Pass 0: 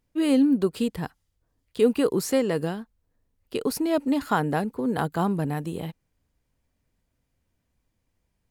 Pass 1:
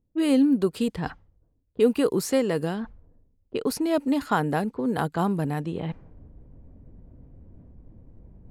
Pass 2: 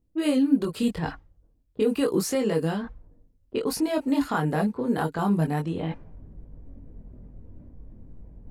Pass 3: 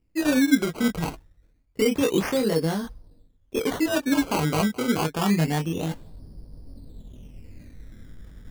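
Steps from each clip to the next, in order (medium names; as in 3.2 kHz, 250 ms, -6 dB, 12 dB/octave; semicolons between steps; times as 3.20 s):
level-controlled noise filter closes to 430 Hz, open at -22 dBFS; reverse; upward compressor, threshold -25 dBFS; reverse
peak limiter -16.5 dBFS, peak gain reduction 7.5 dB; chorus voices 6, 0.29 Hz, delay 22 ms, depth 3.5 ms; trim +4.5 dB
decimation with a swept rate 17×, swing 100% 0.27 Hz; trim +1.5 dB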